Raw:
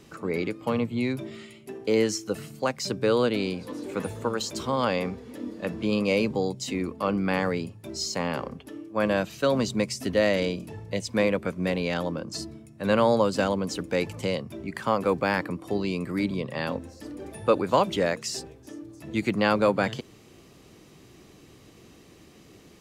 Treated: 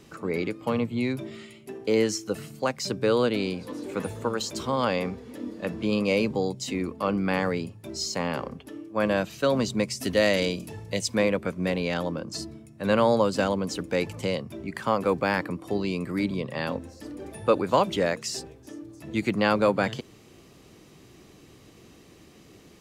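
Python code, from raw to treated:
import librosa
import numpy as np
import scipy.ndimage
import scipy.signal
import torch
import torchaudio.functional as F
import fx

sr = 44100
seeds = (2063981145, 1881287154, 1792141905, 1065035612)

y = fx.high_shelf(x, sr, hz=3300.0, db=8.5, at=(10.01, 11.15))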